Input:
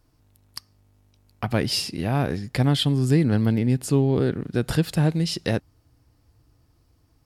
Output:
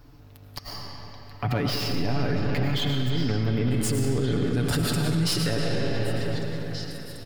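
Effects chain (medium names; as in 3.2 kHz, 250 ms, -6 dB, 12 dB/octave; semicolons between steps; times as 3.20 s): tracing distortion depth 0.053 ms; comb 7 ms, depth 47%; compressor with a negative ratio -23 dBFS, ratio -1; reverberation RT60 3.7 s, pre-delay 65 ms, DRR 3.5 dB; peak limiter -25 dBFS, peak gain reduction 16.5 dB; peaking EQ 9.2 kHz -14 dB 0.92 oct, from 3.71 s +3.5 dB; repeats whose band climbs or falls 740 ms, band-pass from 1.7 kHz, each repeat 1.4 oct, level -7 dB; trim +8 dB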